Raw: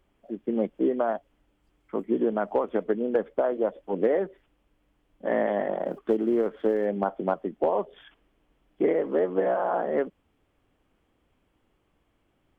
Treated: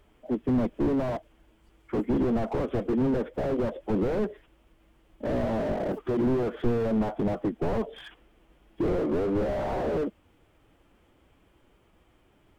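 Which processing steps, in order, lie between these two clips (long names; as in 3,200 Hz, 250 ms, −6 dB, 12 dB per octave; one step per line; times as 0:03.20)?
phase-vocoder pitch shift with formants kept +1.5 semitones
slew-rate limiting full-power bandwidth 9.2 Hz
level +8 dB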